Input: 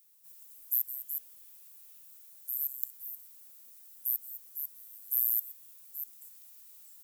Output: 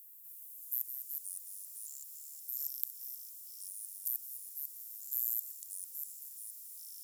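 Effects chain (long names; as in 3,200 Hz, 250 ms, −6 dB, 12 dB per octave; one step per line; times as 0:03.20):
compressor on every frequency bin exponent 0.4
delay with pitch and tempo change per echo 289 ms, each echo −5 semitones, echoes 3, each echo −6 dB
harmonic generator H 7 −21 dB, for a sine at −0.5 dBFS
level −5.5 dB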